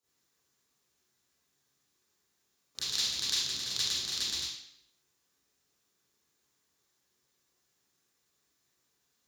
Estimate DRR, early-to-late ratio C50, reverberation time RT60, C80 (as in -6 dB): -11.5 dB, -1.0 dB, 0.70 s, 4.0 dB